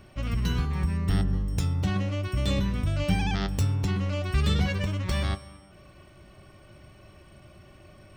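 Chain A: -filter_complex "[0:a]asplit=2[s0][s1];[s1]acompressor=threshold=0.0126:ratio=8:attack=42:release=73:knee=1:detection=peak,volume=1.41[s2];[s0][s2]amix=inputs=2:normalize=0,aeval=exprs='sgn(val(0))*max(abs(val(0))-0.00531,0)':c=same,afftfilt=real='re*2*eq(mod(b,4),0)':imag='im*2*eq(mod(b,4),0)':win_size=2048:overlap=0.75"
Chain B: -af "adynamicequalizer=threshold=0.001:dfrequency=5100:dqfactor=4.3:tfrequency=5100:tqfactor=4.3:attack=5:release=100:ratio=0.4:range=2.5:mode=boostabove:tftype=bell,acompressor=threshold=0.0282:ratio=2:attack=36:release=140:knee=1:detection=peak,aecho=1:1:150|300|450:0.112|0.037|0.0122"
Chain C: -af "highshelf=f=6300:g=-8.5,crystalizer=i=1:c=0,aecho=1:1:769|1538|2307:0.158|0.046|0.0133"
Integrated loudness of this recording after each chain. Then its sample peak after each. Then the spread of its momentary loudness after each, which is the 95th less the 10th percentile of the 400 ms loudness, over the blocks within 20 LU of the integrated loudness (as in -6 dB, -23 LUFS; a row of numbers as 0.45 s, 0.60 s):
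-27.0 LUFS, -31.0 LUFS, -27.5 LUFS; -12.5 dBFS, -16.0 dBFS, -12.5 dBFS; 6 LU, 3 LU, 17 LU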